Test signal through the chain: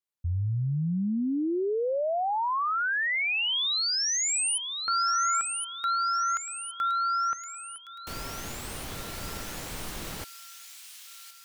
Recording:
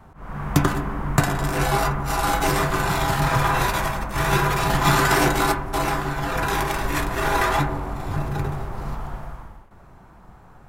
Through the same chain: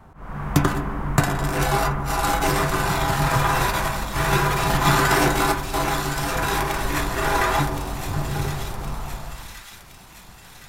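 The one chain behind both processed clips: feedback echo behind a high-pass 1067 ms, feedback 55%, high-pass 3.1 kHz, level -5 dB

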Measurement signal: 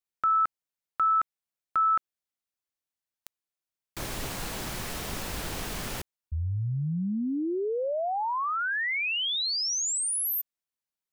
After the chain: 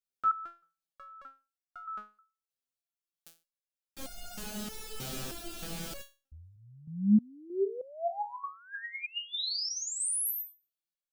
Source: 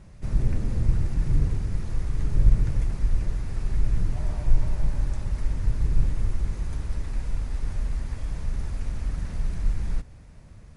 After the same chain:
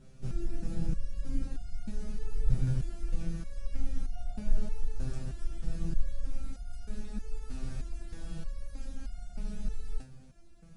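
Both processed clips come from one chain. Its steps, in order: graphic EQ with 31 bands 100 Hz -10 dB, 200 Hz +7 dB, 1 kHz -11 dB, 2 kHz -9 dB; resonator arpeggio 3.2 Hz 130–710 Hz; trim +8 dB

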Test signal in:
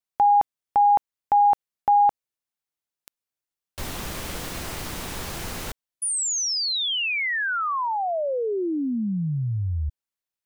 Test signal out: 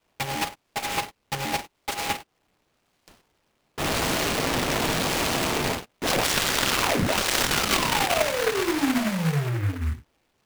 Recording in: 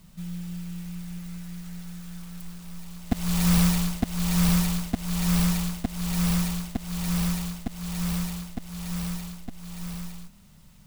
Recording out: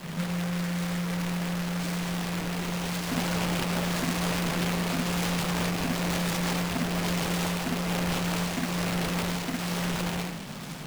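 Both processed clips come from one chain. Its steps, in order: high-pass 180 Hz 12 dB/octave; peaking EQ 4.3 kHz -7 dB 0.91 oct; in parallel at +1.5 dB: compression, threshold -34 dBFS; on the sum: peak limiter -19.5 dBFS; saturation -37.5 dBFS; gated-style reverb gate 150 ms falling, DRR -4.5 dB; decimation with a swept rate 13×, swing 60% 0.91 Hz; delay time shaken by noise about 1.5 kHz, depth 0.17 ms; trim +8.5 dB

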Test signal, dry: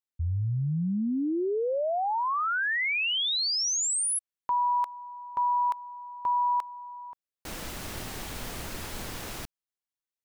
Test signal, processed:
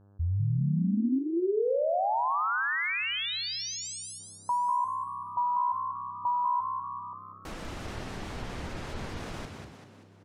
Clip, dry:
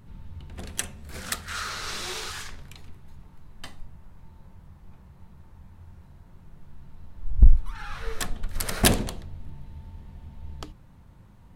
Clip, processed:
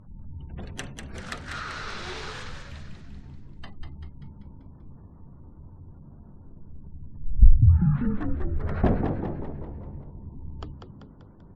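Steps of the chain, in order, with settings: mains buzz 100 Hz, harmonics 17, -58 dBFS -7 dB/octave; spectral gate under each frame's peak -30 dB strong; treble shelf 2.7 kHz -8.5 dB; low-pass that closes with the level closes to 930 Hz, closed at -23.5 dBFS; frequency-shifting echo 194 ms, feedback 50%, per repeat +64 Hz, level -6 dB

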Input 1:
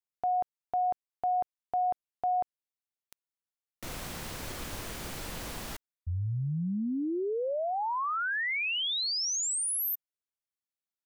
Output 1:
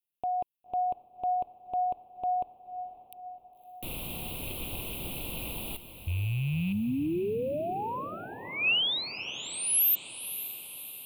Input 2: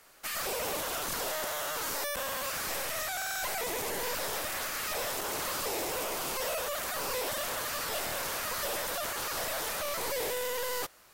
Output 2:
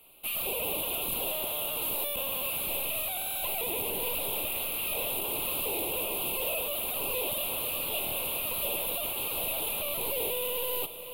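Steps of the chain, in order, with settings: rattle on loud lows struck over -38 dBFS, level -34 dBFS; FFT filter 350 Hz 0 dB, 1 kHz -5 dB, 1.8 kHz -24 dB, 2.6 kHz +6 dB, 3.8 kHz -1 dB, 5.8 kHz -27 dB, 11 kHz +6 dB; echo that smears into a reverb 551 ms, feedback 58%, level -12 dB; trim +1.5 dB

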